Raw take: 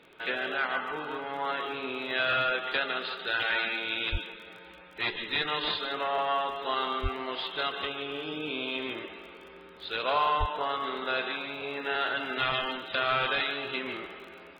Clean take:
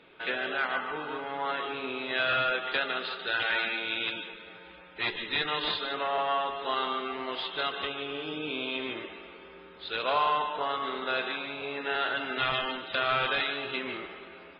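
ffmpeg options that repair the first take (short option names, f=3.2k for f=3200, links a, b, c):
-filter_complex "[0:a]adeclick=t=4,asplit=3[a][b][c];[a]afade=t=out:st=4.11:d=0.02[d];[b]highpass=f=140:w=0.5412,highpass=f=140:w=1.3066,afade=t=in:st=4.11:d=0.02,afade=t=out:st=4.23:d=0.02[e];[c]afade=t=in:st=4.23:d=0.02[f];[d][e][f]amix=inputs=3:normalize=0,asplit=3[g][h][i];[g]afade=t=out:st=7.02:d=0.02[j];[h]highpass=f=140:w=0.5412,highpass=f=140:w=1.3066,afade=t=in:st=7.02:d=0.02,afade=t=out:st=7.14:d=0.02[k];[i]afade=t=in:st=7.14:d=0.02[l];[j][k][l]amix=inputs=3:normalize=0,asplit=3[m][n][o];[m]afade=t=out:st=10.39:d=0.02[p];[n]highpass=f=140:w=0.5412,highpass=f=140:w=1.3066,afade=t=in:st=10.39:d=0.02,afade=t=out:st=10.51:d=0.02[q];[o]afade=t=in:st=10.51:d=0.02[r];[p][q][r]amix=inputs=3:normalize=0"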